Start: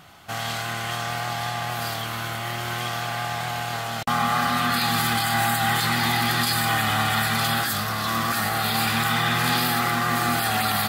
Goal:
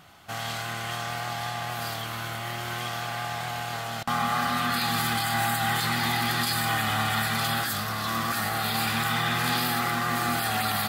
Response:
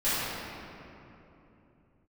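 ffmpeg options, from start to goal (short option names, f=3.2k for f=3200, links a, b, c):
-filter_complex "[0:a]asplit=2[a][b];[1:a]atrim=start_sample=2205,atrim=end_sample=6615[c];[b][c]afir=irnorm=-1:irlink=0,volume=-31.5dB[d];[a][d]amix=inputs=2:normalize=0,volume=-4dB"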